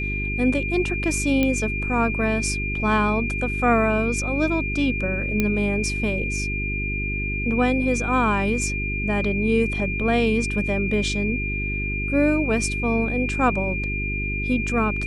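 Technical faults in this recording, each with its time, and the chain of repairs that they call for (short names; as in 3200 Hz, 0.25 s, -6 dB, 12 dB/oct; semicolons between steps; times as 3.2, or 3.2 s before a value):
hum 50 Hz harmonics 8 -28 dBFS
tone 2400 Hz -27 dBFS
1.43 pop -9 dBFS
5.4 pop -8 dBFS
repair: de-click; de-hum 50 Hz, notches 8; notch 2400 Hz, Q 30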